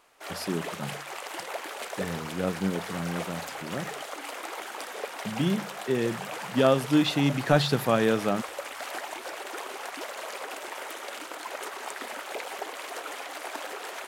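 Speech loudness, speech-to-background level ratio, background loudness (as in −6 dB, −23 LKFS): −27.5 LKFS, 9.5 dB, −37.0 LKFS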